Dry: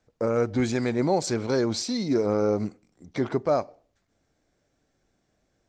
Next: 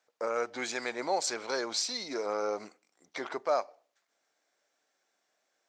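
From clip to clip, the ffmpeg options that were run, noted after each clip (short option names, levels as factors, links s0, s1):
-af "highpass=750"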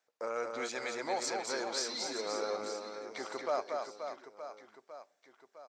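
-af "aecho=1:1:230|529|917.7|1423|2080:0.631|0.398|0.251|0.158|0.1,volume=0.562"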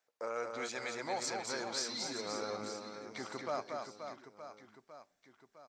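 -af "asubboost=boost=9:cutoff=170,volume=0.841"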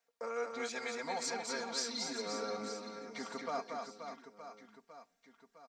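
-af "aecho=1:1:4.3:0.91,volume=0.75"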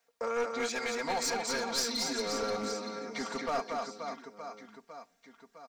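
-af "aeval=exprs='clip(val(0),-1,0.015)':c=same,volume=2.24"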